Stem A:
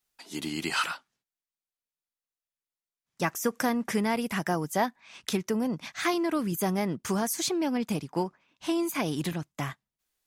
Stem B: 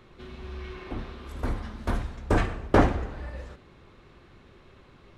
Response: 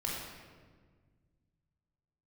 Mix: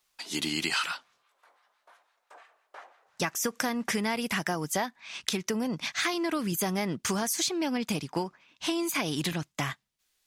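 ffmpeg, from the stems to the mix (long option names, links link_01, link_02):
-filter_complex "[0:a]equalizer=frequency=4000:width=0.4:gain=7.5,acompressor=threshold=-28dB:ratio=6,volume=2dB[link_01];[1:a]highpass=frequency=660:width=0.5412,highpass=frequency=660:width=1.3066,acrossover=split=1000[link_02][link_03];[link_02]aeval=exprs='val(0)*(1-0.7/2+0.7/2*cos(2*PI*5.9*n/s))':channel_layout=same[link_04];[link_03]aeval=exprs='val(0)*(1-0.7/2-0.7/2*cos(2*PI*5.9*n/s))':channel_layout=same[link_05];[link_04][link_05]amix=inputs=2:normalize=0,volume=-18.5dB[link_06];[link_01][link_06]amix=inputs=2:normalize=0"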